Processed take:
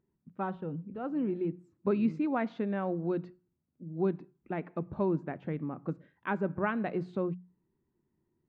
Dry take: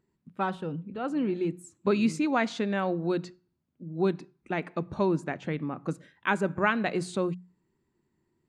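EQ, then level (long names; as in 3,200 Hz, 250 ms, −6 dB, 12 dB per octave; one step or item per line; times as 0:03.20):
head-to-tape spacing loss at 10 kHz 43 dB
−2.0 dB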